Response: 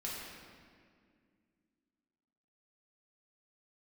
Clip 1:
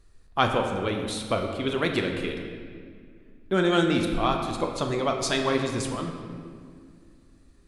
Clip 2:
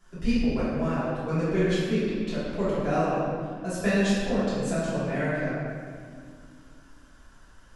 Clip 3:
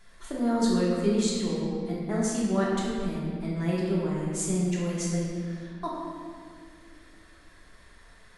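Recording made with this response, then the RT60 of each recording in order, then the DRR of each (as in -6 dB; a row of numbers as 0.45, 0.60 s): 3; 2.1, 2.1, 2.1 s; 2.5, -13.0, -6.0 dB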